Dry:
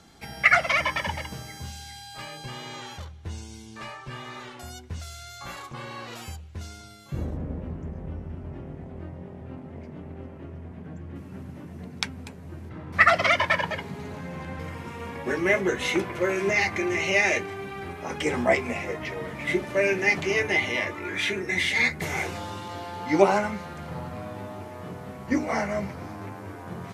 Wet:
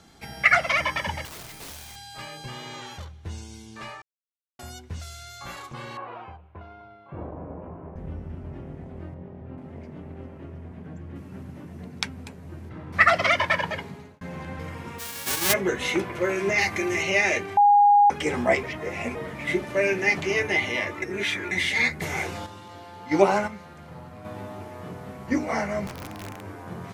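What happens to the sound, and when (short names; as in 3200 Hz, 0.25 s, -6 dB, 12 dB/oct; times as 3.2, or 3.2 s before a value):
1.25–1.96 wrapped overs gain 35.5 dB
4.02–4.59 mute
5.97–7.96 speaker cabinet 120–2200 Hz, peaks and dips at 140 Hz -8 dB, 230 Hz -9 dB, 690 Hz +6 dB, 1000 Hz +8 dB, 1900 Hz -7 dB
9.14–9.58 tape spacing loss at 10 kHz 21 dB
13.79–14.21 fade out
14.98–15.52 spectral whitening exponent 0.1
16.58–17.03 high shelf 6100 Hz +9 dB
17.57–18.1 bleep 819 Hz -12.5 dBFS
18.63–19.15 reverse
21.02–21.51 reverse
22.46–24.25 gate -29 dBFS, range -7 dB
25.87–26.43 wrapped overs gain 29.5 dB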